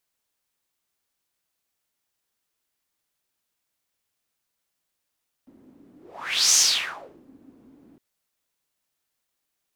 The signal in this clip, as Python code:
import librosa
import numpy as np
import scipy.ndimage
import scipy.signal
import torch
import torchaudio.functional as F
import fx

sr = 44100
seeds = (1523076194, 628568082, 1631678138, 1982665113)

y = fx.whoosh(sr, seeds[0], length_s=2.51, peak_s=1.08, rise_s=0.62, fall_s=0.72, ends_hz=270.0, peak_hz=6300.0, q=4.8, swell_db=36)